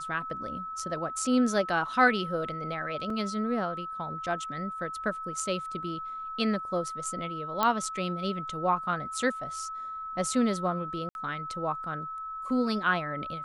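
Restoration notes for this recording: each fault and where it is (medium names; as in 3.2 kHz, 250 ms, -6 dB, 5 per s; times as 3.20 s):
whine 1.3 kHz -35 dBFS
3.10 s: dropout 3.1 ms
7.63 s: pop -11 dBFS
11.09–11.15 s: dropout 61 ms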